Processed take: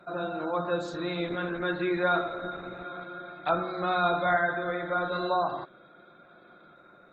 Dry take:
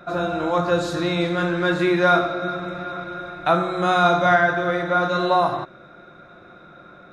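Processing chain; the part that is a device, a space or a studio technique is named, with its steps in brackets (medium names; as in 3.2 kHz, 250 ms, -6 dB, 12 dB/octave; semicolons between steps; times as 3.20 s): noise-suppressed video call (high-pass 170 Hz 12 dB/octave; spectral gate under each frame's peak -30 dB strong; trim -8.5 dB; Opus 16 kbps 48 kHz)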